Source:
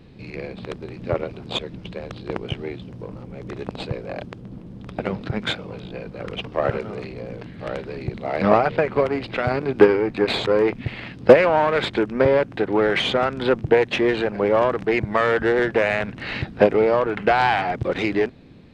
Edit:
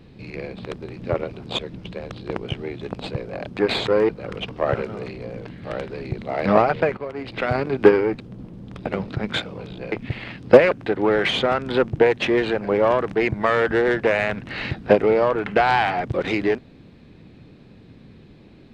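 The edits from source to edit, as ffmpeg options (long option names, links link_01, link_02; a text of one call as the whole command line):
ffmpeg -i in.wav -filter_complex "[0:a]asplit=8[link_01][link_02][link_03][link_04][link_05][link_06][link_07][link_08];[link_01]atrim=end=2.812[link_09];[link_02]atrim=start=3.568:end=4.332[link_10];[link_03]atrim=start=10.158:end=10.682[link_11];[link_04]atrim=start=6.048:end=8.93,asetpts=PTS-STARTPTS,afade=type=out:start_time=2.878:duration=0.004:curve=hsin:silence=0.223872[link_12];[link_05]atrim=start=8.93:end=10.162,asetpts=PTS-STARTPTS,afade=type=in:duration=0.4:curve=qua:silence=0.223872[link_13];[link_06]atrim=start=4.328:end=6.052[link_14];[link_07]atrim=start=10.678:end=11.472[link_15];[link_08]atrim=start=12.418[link_16];[link_09][link_10]acrossfade=duration=0.004:curve1=hsin:curve2=hsin[link_17];[link_17][link_11]acrossfade=duration=0.004:curve1=hsin:curve2=hsin[link_18];[link_12][link_13]concat=n=2:v=0:a=1[link_19];[link_18][link_19]acrossfade=duration=0.004:curve1=hsin:curve2=hsin[link_20];[link_20][link_14]acrossfade=duration=0.004:curve1=hsin:curve2=hsin[link_21];[link_21][link_15]acrossfade=duration=0.004:curve1=hsin:curve2=hsin[link_22];[link_22][link_16]acrossfade=duration=0.004:curve1=hsin:curve2=hsin" out.wav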